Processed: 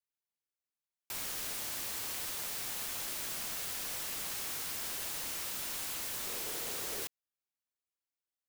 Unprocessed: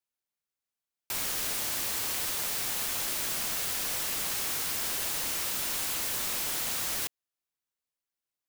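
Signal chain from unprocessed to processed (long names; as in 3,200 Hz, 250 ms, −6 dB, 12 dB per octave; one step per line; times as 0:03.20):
0:06.23–0:07.03: parametric band 430 Hz +8.5 dB → +14.5 dB 0.66 octaves
level −7 dB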